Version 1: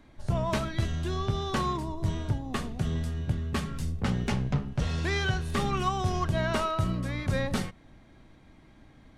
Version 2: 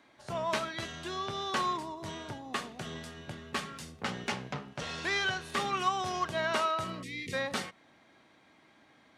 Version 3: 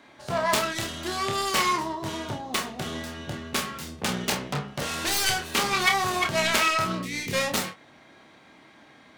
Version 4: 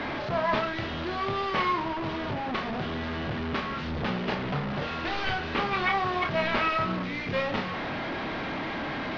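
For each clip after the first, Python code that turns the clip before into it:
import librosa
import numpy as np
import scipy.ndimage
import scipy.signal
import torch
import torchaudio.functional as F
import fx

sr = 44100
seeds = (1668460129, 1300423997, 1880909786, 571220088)

y1 = fx.weighting(x, sr, curve='A')
y1 = fx.spec_box(y1, sr, start_s=7.03, length_s=0.3, low_hz=500.0, high_hz=1800.0, gain_db=-30)
y2 = fx.self_delay(y1, sr, depth_ms=0.44)
y2 = fx.room_early_taps(y2, sr, ms=(28, 49), db=(-5.5, -13.5))
y2 = y2 * librosa.db_to_amplitude(8.0)
y3 = fx.delta_mod(y2, sr, bps=32000, step_db=-24.0)
y3 = fx.air_absorb(y3, sr, metres=350.0)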